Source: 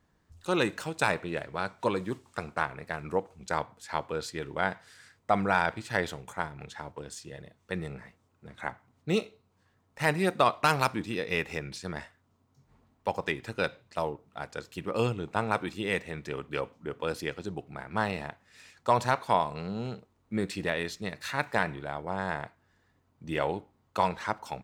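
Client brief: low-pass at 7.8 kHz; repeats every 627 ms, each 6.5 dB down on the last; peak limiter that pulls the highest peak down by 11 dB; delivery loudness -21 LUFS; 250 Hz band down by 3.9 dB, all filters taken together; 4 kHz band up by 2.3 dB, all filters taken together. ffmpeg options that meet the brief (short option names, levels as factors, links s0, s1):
-af "lowpass=7800,equalizer=f=250:t=o:g=-6,equalizer=f=4000:t=o:g=3,alimiter=limit=0.0891:level=0:latency=1,aecho=1:1:627|1254|1881|2508|3135|3762:0.473|0.222|0.105|0.0491|0.0231|0.0109,volume=5.96"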